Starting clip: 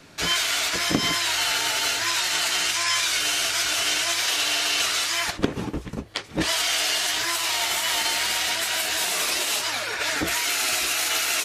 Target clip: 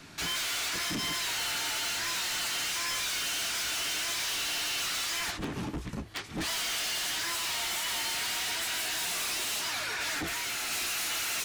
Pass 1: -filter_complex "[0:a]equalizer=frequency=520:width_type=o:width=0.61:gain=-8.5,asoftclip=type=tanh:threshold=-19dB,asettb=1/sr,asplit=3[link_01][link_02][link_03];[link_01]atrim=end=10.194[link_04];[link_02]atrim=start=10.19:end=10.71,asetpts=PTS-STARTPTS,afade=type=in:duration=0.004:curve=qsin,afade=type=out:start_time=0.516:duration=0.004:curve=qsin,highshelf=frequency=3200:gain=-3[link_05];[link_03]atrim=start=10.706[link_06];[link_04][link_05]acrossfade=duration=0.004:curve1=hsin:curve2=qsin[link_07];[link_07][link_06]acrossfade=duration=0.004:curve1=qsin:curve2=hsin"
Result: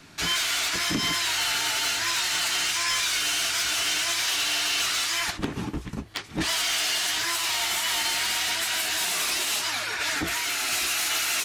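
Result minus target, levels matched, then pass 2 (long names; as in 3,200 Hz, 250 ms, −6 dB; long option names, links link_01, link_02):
soft clipping: distortion −9 dB
-filter_complex "[0:a]equalizer=frequency=520:width_type=o:width=0.61:gain=-8.5,asoftclip=type=tanh:threshold=-30.5dB,asettb=1/sr,asplit=3[link_01][link_02][link_03];[link_01]atrim=end=10.194[link_04];[link_02]atrim=start=10.19:end=10.71,asetpts=PTS-STARTPTS,afade=type=in:duration=0.004:curve=qsin,afade=type=out:start_time=0.516:duration=0.004:curve=qsin,highshelf=frequency=3200:gain=-3[link_05];[link_03]atrim=start=10.706[link_06];[link_04][link_05]acrossfade=duration=0.004:curve1=hsin:curve2=qsin[link_07];[link_07][link_06]acrossfade=duration=0.004:curve1=qsin:curve2=hsin"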